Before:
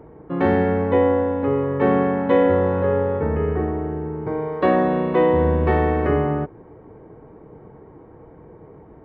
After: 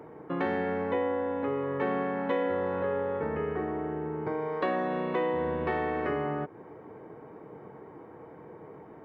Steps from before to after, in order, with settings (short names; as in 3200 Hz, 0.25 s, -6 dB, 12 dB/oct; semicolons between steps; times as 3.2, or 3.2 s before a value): HPF 140 Hz 12 dB/oct; tilt shelf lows -4 dB, about 820 Hz; compressor 2.5:1, threshold -31 dBFS, peak gain reduction 11.5 dB